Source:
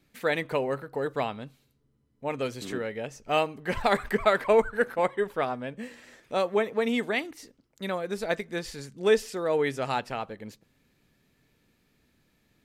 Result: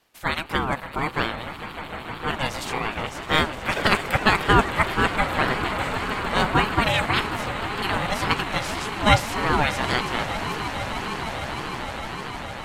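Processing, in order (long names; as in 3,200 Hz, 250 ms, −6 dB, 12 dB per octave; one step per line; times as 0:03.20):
ceiling on every frequency bin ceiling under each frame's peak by 14 dB
automatic gain control gain up to 4 dB
echo that builds up and dies away 153 ms, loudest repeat 8, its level −16 dB
ring modulator whose carrier an LFO sweeps 490 Hz, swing 30%, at 1.8 Hz
level +3.5 dB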